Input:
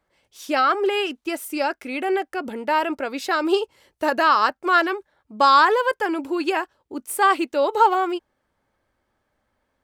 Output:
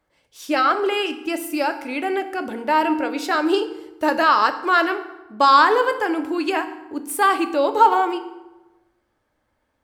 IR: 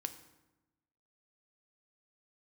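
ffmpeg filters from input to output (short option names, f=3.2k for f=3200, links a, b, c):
-filter_complex "[1:a]atrim=start_sample=2205,asetrate=42777,aresample=44100[a];[0:a][a]afir=irnorm=-1:irlink=0,volume=2.5dB"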